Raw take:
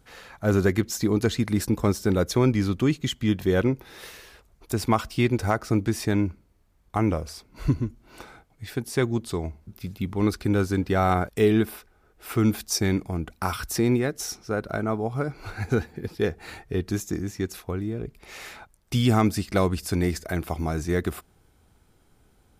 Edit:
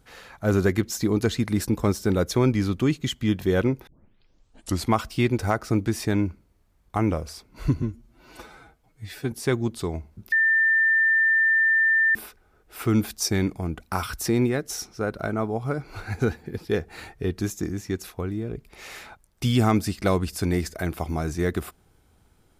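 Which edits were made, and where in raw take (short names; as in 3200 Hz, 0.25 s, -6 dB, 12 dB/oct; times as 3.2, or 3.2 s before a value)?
3.87 tape start 1.05 s
7.82–8.82 stretch 1.5×
9.82–11.65 bleep 1790 Hz -16.5 dBFS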